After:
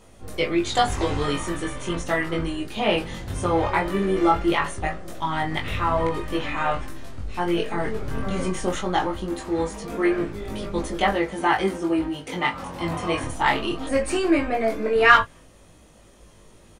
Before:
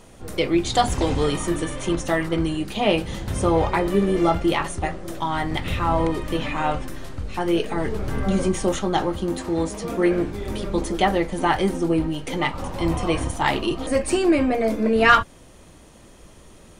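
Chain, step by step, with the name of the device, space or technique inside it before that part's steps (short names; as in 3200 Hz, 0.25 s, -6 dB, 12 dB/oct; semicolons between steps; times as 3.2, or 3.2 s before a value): double-tracked vocal (doubler 18 ms -11.5 dB; chorus 0.19 Hz, delay 19.5 ms, depth 3.3 ms); dynamic EQ 1600 Hz, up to +6 dB, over -39 dBFS, Q 0.72; 11.13–13.23 HPF 91 Hz 6 dB/oct; gain -1 dB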